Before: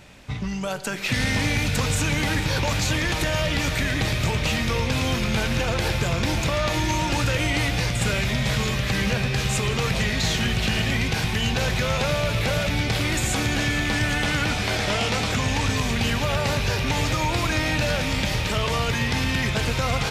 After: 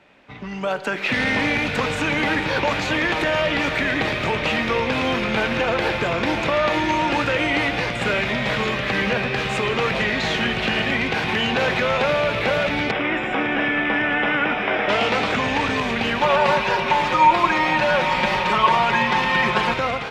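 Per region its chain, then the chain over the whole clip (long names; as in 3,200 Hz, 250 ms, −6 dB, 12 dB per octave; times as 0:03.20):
0:11.28–0:11.81: high-pass filter 65 Hz + envelope flattener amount 50%
0:12.91–0:14.89: Savitzky-Golay smoothing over 25 samples + parametric band 78 Hz −14 dB 1 octave
0:16.21–0:19.74: parametric band 1,000 Hz +10 dB 0.36 octaves + mains-hum notches 50/100/150/200/250/300/350/400 Hz + comb filter 5.5 ms, depth 93%
whole clip: three-way crossover with the lows and the highs turned down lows −17 dB, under 220 Hz, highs −17 dB, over 3,300 Hz; automatic gain control gain up to 9.5 dB; high-shelf EQ 12,000 Hz −8.5 dB; level −3 dB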